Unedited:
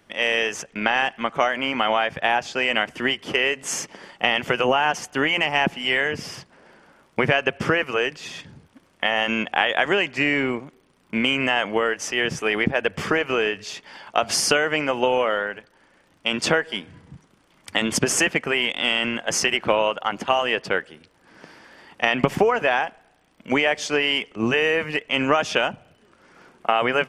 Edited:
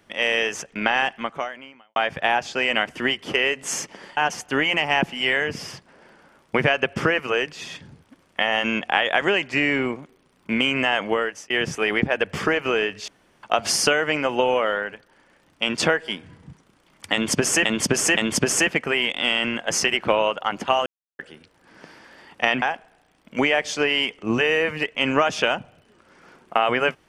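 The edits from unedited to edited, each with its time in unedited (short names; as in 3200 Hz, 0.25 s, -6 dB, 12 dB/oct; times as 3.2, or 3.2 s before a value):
1.11–1.96 fade out quadratic
4.17–4.81 cut
11.69–12.14 fade out equal-power
13.72–14.07 room tone
17.77–18.29 loop, 3 plays
20.46–20.79 mute
22.22–22.75 cut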